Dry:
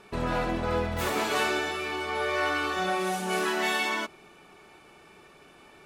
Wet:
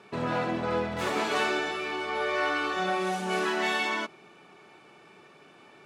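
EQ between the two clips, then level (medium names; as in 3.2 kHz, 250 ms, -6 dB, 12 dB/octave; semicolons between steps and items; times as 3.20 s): high-pass 110 Hz 24 dB/octave; distance through air 51 m; 0.0 dB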